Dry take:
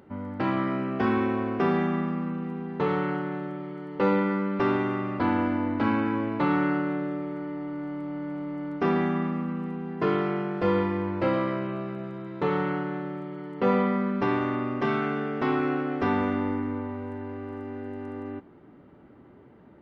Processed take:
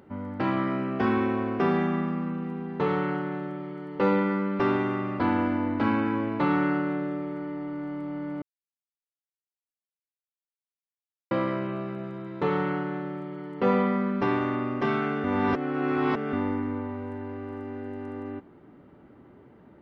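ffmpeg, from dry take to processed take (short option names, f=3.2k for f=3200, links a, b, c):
-filter_complex "[0:a]asplit=5[a][b][c][d][e];[a]atrim=end=8.42,asetpts=PTS-STARTPTS,afade=t=out:st=8.416:d=0.004:c=hsin[f];[b]atrim=start=8.42:end=11.31,asetpts=PTS-STARTPTS,volume=0[g];[c]atrim=start=11.31:end=15.242,asetpts=PTS-STARTPTS,afade=t=in:d=0.004:c=hsin[h];[d]atrim=start=15.238:end=16.332,asetpts=PTS-STARTPTS,areverse[i];[e]atrim=start=16.328[j];[f][g][h]concat=n=3:v=0:a=1[k];[k][i]acrossfade=d=0.004:c1=hsin:c2=hsin[l];[l][j]acrossfade=d=0.004:c1=hsin:c2=hsin"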